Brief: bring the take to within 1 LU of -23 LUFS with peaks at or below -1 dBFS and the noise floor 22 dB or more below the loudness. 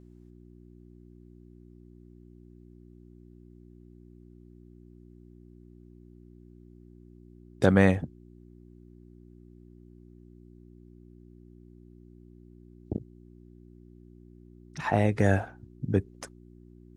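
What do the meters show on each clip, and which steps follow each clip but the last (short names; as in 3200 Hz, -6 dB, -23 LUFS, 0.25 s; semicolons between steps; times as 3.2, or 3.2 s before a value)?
hum 60 Hz; harmonics up to 360 Hz; hum level -50 dBFS; loudness -27.0 LUFS; peak -6.0 dBFS; loudness target -23.0 LUFS
-> de-hum 60 Hz, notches 6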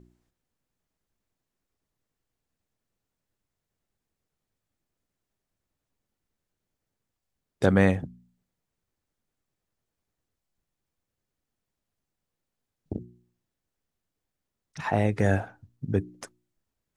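hum none; loudness -26.0 LUFS; peak -6.0 dBFS; loudness target -23.0 LUFS
-> gain +3 dB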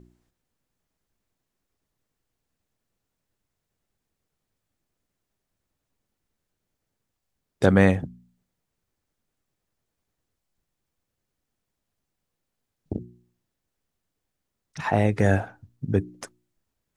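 loudness -23.0 LUFS; peak -3.0 dBFS; noise floor -82 dBFS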